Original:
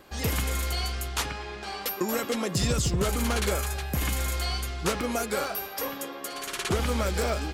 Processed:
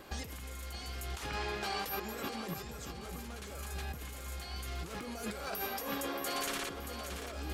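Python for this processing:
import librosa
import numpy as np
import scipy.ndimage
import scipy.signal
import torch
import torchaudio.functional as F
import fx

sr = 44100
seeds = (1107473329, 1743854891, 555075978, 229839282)

y = fx.over_compress(x, sr, threshold_db=-36.0, ratio=-1.0)
y = fx.echo_feedback(y, sr, ms=627, feedback_pct=44, wet_db=-8.5)
y = y * librosa.db_to_amplitude(-5.5)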